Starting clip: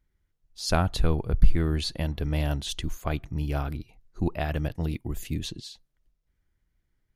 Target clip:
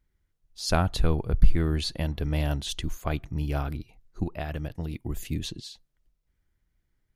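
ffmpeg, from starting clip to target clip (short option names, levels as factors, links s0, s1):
-filter_complex "[0:a]asettb=1/sr,asplit=3[s0][s1][s2];[s0]atrim=end=4.234[s3];[s1]atrim=start=4.23:end=5.02,asetpts=PTS-STARTPTS,afade=t=in:d=0.004:c=qsin,afade=t=out:st=0.786:d=0.004:c=qsin,acompressor=threshold=0.0398:ratio=6[s4];[s2]atrim=start=5.016[s5];[s3][s4]acrossfade=d=0.004:c1=hsin:c2=qsin[s6];[s6][s5]acrossfade=d=0.004:c1=qsin:c2=hsin"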